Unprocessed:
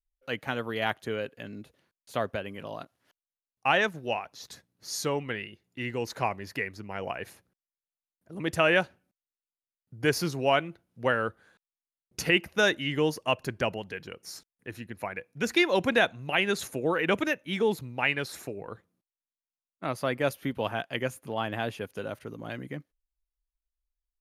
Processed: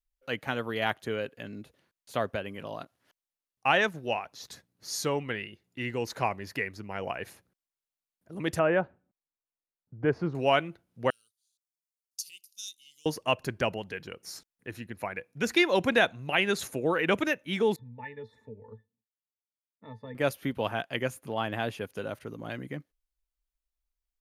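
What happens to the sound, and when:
0:08.59–0:10.35: low-pass filter 1,200 Hz
0:11.10–0:13.06: inverse Chebyshev high-pass filter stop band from 1,900 Hz, stop band 50 dB
0:17.76–0:20.15: resonances in every octave A, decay 0.11 s

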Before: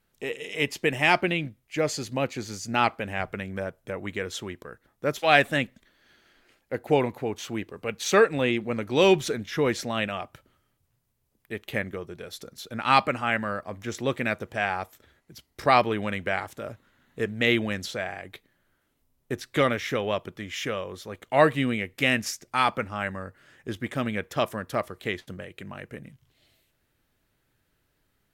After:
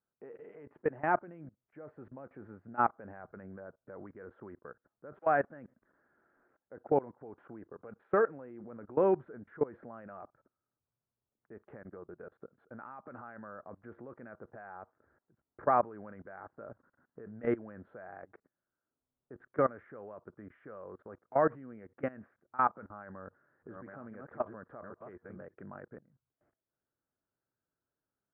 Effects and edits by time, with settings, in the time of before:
0:11.67–0:13.14: downward compressor 5 to 1, threshold −32 dBFS
0:22.86–0:25.54: delay that plays each chunk backwards 624 ms, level −6 dB
whole clip: high-pass filter 180 Hz 6 dB per octave; output level in coarse steps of 22 dB; elliptic low-pass filter 1,500 Hz, stop band 80 dB; level −2 dB

